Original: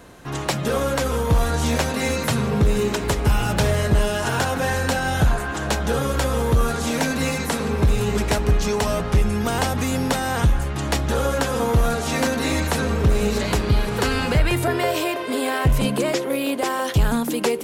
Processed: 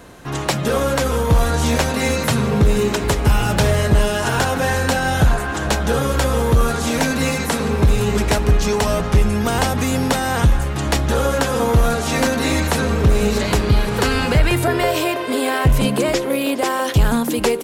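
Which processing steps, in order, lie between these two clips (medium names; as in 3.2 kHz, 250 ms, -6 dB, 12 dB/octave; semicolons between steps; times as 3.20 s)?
delay 413 ms -21 dB; trim +3.5 dB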